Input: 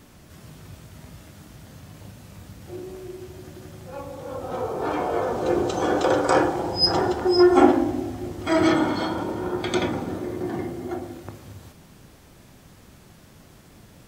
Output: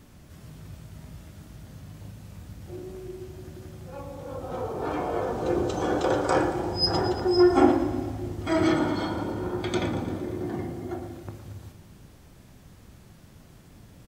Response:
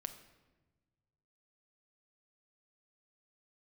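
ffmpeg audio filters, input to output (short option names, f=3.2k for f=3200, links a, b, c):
-af "lowshelf=f=190:g=7,aecho=1:1:115|230|345|460|575|690:0.211|0.127|0.0761|0.0457|0.0274|0.0164,volume=-5dB"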